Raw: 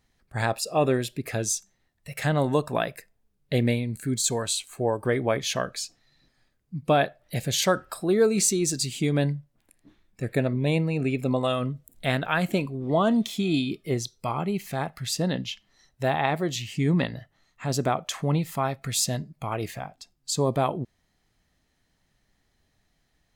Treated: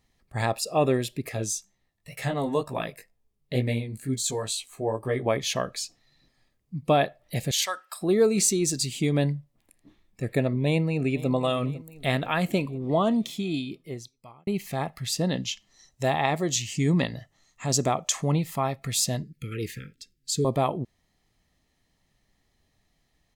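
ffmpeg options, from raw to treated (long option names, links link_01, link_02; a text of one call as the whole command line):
ffmpeg -i in.wav -filter_complex "[0:a]asettb=1/sr,asplit=3[link_01][link_02][link_03];[link_01]atrim=end=1.294[link_04];[link_02]atrim=start=1.29:end=5.26,asetpts=PTS-STARTPTS,afade=type=in:duration=0.004:curve=qsin,afade=type=out:start_time=3.966:duration=0.004:curve=qsin,flanger=delay=15:depth=4.5:speed=2.1[link_05];[link_03]atrim=start=5.256[link_06];[link_04][link_05]acrossfade=duration=0.004:curve1=hsin:curve2=qsin[link_07];[link_07][link_06]acrossfade=duration=0.004:curve1=qsin:curve2=hsin,asettb=1/sr,asplit=3[link_08][link_09][link_10];[link_08]atrim=end=7.514[link_11];[link_09]atrim=start=7.51:end=8.01,asetpts=PTS-STARTPTS,afade=type=in:duration=0.004:curve=qsin,afade=type=out:start_time=0.496:duration=0.004:curve=qsin,highpass=1200[link_12];[link_10]atrim=start=8.006[link_13];[link_11][link_12]acrossfade=duration=0.004:curve1=hsin:curve2=qsin[link_14];[link_14][link_13]acrossfade=duration=0.004:curve1=qsin:curve2=hsin,asplit=2[link_15][link_16];[link_16]afade=type=in:start_time=10.65:duration=0.01,afade=type=out:start_time=11.31:duration=0.01,aecho=0:1:500|1000|1500|2000|2500|3000:0.141254|0.0847523|0.0508514|0.0305108|0.0183065|0.0109839[link_17];[link_15][link_17]amix=inputs=2:normalize=0,asettb=1/sr,asplit=3[link_18][link_19][link_20];[link_18]atrim=end=15.324[link_21];[link_19]atrim=start=15.32:end=18.34,asetpts=PTS-STARTPTS,afade=type=in:duration=0.004:curve=qsin,afade=type=out:start_time=3.016:duration=0.004:curve=qsin,equalizer=frequency=6800:width_type=o:width=0.85:gain=10.5[link_22];[link_20]atrim=start=18.336[link_23];[link_21][link_22]acrossfade=duration=0.004:curve1=hsin:curve2=qsin[link_24];[link_24][link_23]acrossfade=duration=0.004:curve1=qsin:curve2=hsin,asettb=1/sr,asplit=3[link_25][link_26][link_27];[link_25]atrim=end=19.234[link_28];[link_26]atrim=start=19.23:end=20.45,asetpts=PTS-STARTPTS,afade=type=in:duration=0.004:curve=qsin,afade=type=out:start_time=1.216:duration=0.004:curve=qsin,asuperstop=centerf=820:order=20:qfactor=0.98[link_29];[link_27]atrim=start=20.446[link_30];[link_28][link_29]acrossfade=duration=0.004:curve1=hsin:curve2=qsin[link_31];[link_31][link_30]acrossfade=duration=0.004:curve1=qsin:curve2=hsin,asplit=2[link_32][link_33];[link_32]atrim=end=14.47,asetpts=PTS-STARTPTS,afade=type=out:start_time=12.85:duration=1.62[link_34];[link_33]atrim=start=14.47,asetpts=PTS-STARTPTS,afade=type=in:duration=0.004:curve=hsin[link_35];[link_34][link_35]concat=n=2:v=0:a=1,bandreject=frequency=1500:width=5.8" out.wav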